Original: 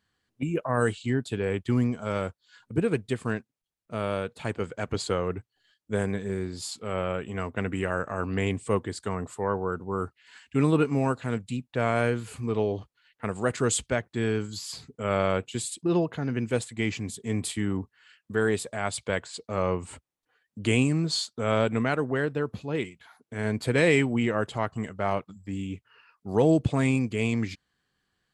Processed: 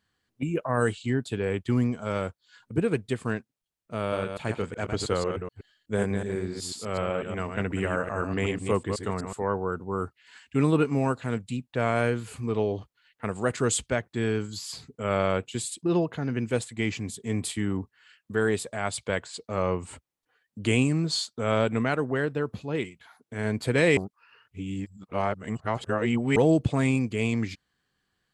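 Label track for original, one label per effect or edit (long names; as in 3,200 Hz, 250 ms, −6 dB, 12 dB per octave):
4.000000	9.430000	delay that plays each chunk backwards 124 ms, level −6 dB
23.970000	26.360000	reverse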